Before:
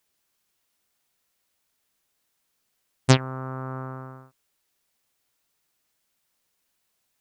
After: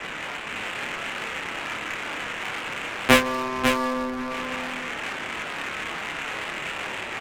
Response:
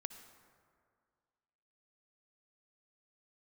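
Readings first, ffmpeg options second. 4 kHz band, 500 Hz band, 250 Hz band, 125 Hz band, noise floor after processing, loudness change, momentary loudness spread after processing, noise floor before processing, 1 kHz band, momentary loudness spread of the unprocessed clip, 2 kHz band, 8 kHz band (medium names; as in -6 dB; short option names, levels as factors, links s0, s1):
+9.0 dB, +7.0 dB, +5.0 dB, -11.5 dB, -34 dBFS, -1.0 dB, 10 LU, -75 dBFS, +10.0 dB, 18 LU, +15.0 dB, +4.5 dB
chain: -filter_complex "[0:a]aeval=exprs='val(0)+0.5*0.0531*sgn(val(0))':c=same,highpass=f=300:t=q:w=0.5412,highpass=f=300:t=q:w=1.307,lowpass=f=2900:t=q:w=0.5176,lowpass=f=2900:t=q:w=0.7071,lowpass=f=2900:t=q:w=1.932,afreqshift=-140,flanger=delay=18.5:depth=7.5:speed=0.28,asplit=2[s0][s1];[s1]acrusher=samples=27:mix=1:aa=0.000001:lfo=1:lforange=27:lforate=2.3,volume=0.316[s2];[s0][s2]amix=inputs=2:normalize=0,crystalizer=i=8.5:c=0,asplit=2[s3][s4];[s4]adelay=29,volume=0.562[s5];[s3][s5]amix=inputs=2:normalize=0,aecho=1:1:547|1094|1641:0.501|0.0802|0.0128,adynamicsmooth=sensitivity=4.5:basefreq=830,volume=1.58"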